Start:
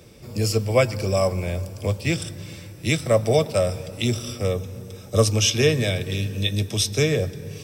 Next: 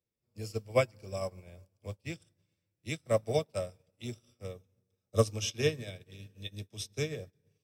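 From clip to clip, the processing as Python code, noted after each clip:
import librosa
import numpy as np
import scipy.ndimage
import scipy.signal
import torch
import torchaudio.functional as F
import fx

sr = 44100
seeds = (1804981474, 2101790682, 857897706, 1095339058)

y = fx.upward_expand(x, sr, threshold_db=-38.0, expansion=2.5)
y = y * librosa.db_to_amplitude(-6.0)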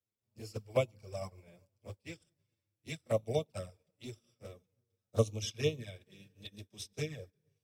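y = fx.env_flanger(x, sr, rest_ms=9.6, full_db=-27.0)
y = y * librosa.db_to_amplitude(-2.0)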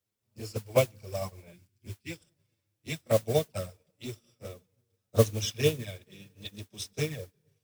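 y = fx.spec_box(x, sr, start_s=1.53, length_s=0.58, low_hz=420.0, high_hz=1400.0, gain_db=-21)
y = fx.mod_noise(y, sr, seeds[0], snr_db=16)
y = y * librosa.db_to_amplitude(6.5)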